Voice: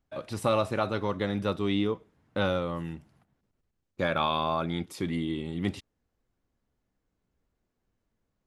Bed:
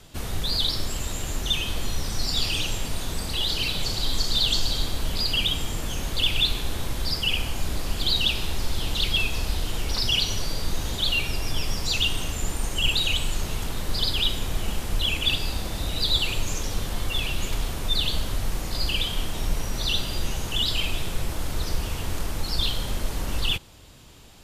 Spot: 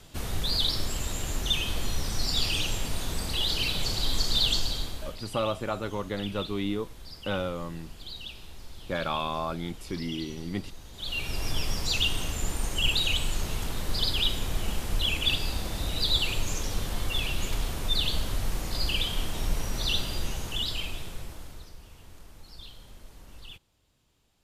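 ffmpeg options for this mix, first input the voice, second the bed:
ffmpeg -i stem1.wav -i stem2.wav -filter_complex "[0:a]adelay=4900,volume=-3dB[link_01];[1:a]volume=13.5dB,afade=type=out:start_time=4.45:duration=0.76:silence=0.158489,afade=type=in:start_time=10.93:duration=0.53:silence=0.16788,afade=type=out:start_time=19.95:duration=1.77:silence=0.11885[link_02];[link_01][link_02]amix=inputs=2:normalize=0" out.wav

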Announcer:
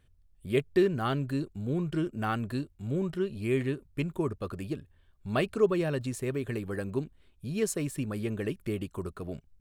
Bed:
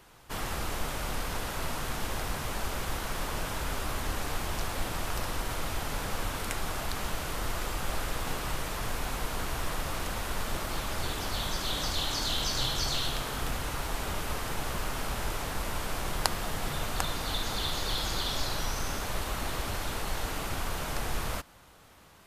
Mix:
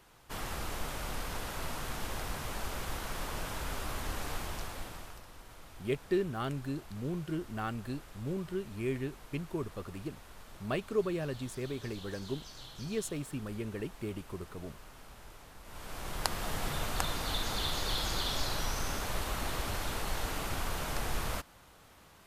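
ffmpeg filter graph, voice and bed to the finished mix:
ffmpeg -i stem1.wav -i stem2.wav -filter_complex "[0:a]adelay=5350,volume=-6dB[link_01];[1:a]volume=12.5dB,afade=type=out:start_time=4.34:duration=0.88:silence=0.188365,afade=type=in:start_time=15.63:duration=0.9:silence=0.141254[link_02];[link_01][link_02]amix=inputs=2:normalize=0" out.wav

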